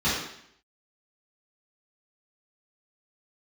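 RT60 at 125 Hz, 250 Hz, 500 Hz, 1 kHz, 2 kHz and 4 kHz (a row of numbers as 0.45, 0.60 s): 0.65, 0.70, 0.70, 0.70, 0.70, 0.70 s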